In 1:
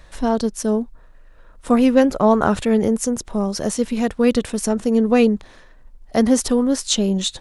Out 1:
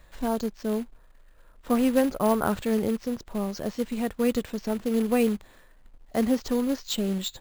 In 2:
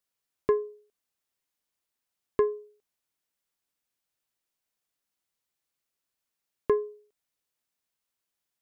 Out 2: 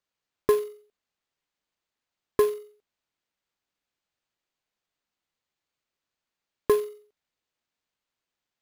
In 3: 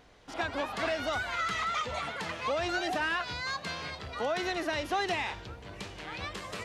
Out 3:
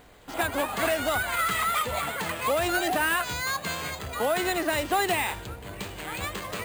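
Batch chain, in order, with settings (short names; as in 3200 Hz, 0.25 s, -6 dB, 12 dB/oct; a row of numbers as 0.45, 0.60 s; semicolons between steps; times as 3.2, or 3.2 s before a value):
short-mantissa float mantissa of 2-bit; careless resampling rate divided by 4×, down filtered, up hold; match loudness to -27 LUFS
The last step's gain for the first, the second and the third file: -8.0, +3.0, +6.0 dB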